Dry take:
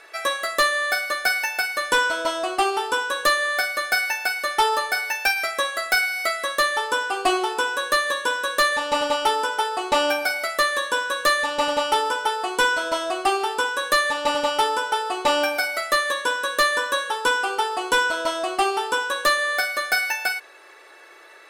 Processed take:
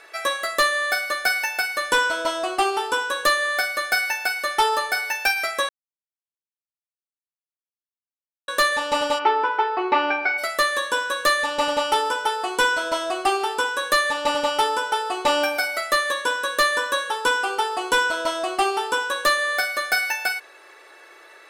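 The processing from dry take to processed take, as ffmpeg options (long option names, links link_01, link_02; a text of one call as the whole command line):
ffmpeg -i in.wav -filter_complex "[0:a]asplit=3[link_01][link_02][link_03];[link_01]afade=type=out:start_time=9.18:duration=0.02[link_04];[link_02]highpass=250,equalizer=frequency=380:width_type=q:width=4:gain=9,equalizer=frequency=560:width_type=q:width=4:gain=-7,equalizer=frequency=1000:width_type=q:width=4:gain=6,equalizer=frequency=2200:width_type=q:width=4:gain=5,equalizer=frequency=3300:width_type=q:width=4:gain=-9,lowpass=frequency=3500:width=0.5412,lowpass=frequency=3500:width=1.3066,afade=type=in:start_time=9.18:duration=0.02,afade=type=out:start_time=10.37:duration=0.02[link_05];[link_03]afade=type=in:start_time=10.37:duration=0.02[link_06];[link_04][link_05][link_06]amix=inputs=3:normalize=0,asplit=3[link_07][link_08][link_09];[link_07]atrim=end=5.69,asetpts=PTS-STARTPTS,afade=type=out:start_time=5.686:duration=0.004:curve=hsin[link_10];[link_08]atrim=start=5.69:end=8.48,asetpts=PTS-STARTPTS,volume=0[link_11];[link_09]atrim=start=8.48,asetpts=PTS-STARTPTS,afade=type=in:duration=0.004:curve=hsin[link_12];[link_10][link_11][link_12]concat=n=3:v=0:a=1" out.wav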